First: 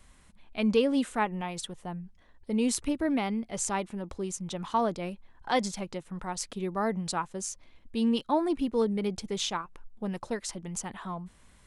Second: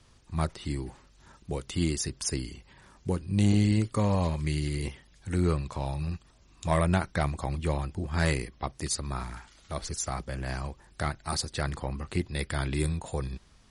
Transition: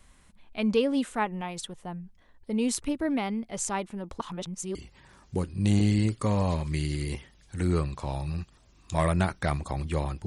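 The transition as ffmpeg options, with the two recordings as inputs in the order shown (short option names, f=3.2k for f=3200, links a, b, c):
-filter_complex "[0:a]apad=whole_dur=10.26,atrim=end=10.26,asplit=2[a][b];[a]atrim=end=4.202[c];[b]atrim=start=4.198:end=4.752,asetpts=PTS-STARTPTS,areverse[d];[1:a]atrim=start=2.478:end=7.99[e];[c][d]acrossfade=d=0.004:c1=hsin:c2=hsin[f];[f][e]acrossfade=d=0.004:c1=hsin:c2=hsin"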